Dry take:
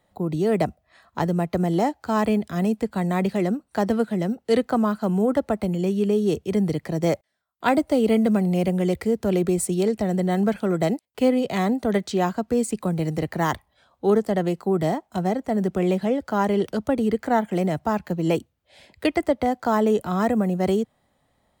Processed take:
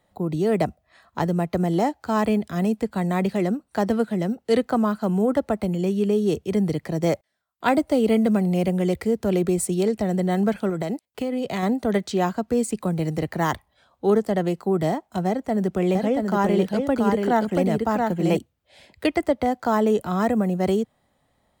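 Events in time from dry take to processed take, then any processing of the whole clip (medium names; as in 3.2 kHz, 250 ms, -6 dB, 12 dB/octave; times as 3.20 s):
10.69–11.63 s: compression 12:1, threshold -21 dBFS
15.27–18.37 s: delay 680 ms -3.5 dB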